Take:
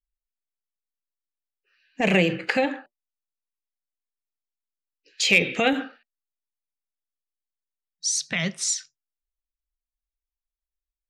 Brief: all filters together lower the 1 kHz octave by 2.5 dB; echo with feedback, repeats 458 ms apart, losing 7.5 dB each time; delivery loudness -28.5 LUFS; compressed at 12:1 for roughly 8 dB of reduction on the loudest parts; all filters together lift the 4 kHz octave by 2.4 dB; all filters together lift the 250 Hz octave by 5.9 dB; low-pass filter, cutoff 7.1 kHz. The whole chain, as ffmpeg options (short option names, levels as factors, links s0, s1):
-af "lowpass=7100,equalizer=f=250:t=o:g=8,equalizer=f=1000:t=o:g=-5,equalizer=f=4000:t=o:g=4,acompressor=threshold=0.1:ratio=12,aecho=1:1:458|916|1374|1832|2290:0.422|0.177|0.0744|0.0312|0.0131,volume=0.841"